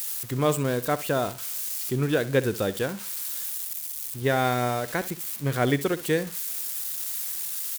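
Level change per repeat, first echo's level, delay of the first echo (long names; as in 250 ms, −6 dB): −12.5 dB, −16.0 dB, 65 ms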